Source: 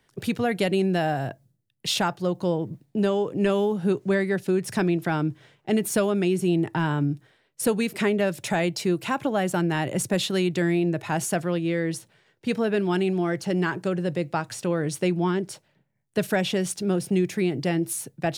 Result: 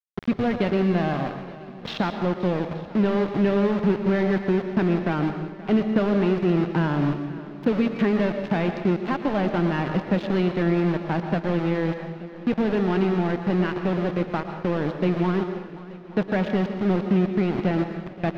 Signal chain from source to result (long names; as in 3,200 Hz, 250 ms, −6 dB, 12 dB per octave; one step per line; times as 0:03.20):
running median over 5 samples
parametric band 220 Hz +5.5 dB 1.1 octaves
in parallel at +1.5 dB: downward compressor 16 to 1, threshold −28 dBFS, peak gain reduction 15.5 dB
on the sum: centre clipping without the shift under −21 dBFS
high-frequency loss of the air 270 metres
on a send: feedback echo with a long and a short gap by turns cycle 878 ms, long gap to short 1.5 to 1, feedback 50%, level −18 dB
on the sum: dense smooth reverb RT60 0.82 s, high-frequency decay 0.95×, pre-delay 100 ms, DRR 7 dB
level −3.5 dB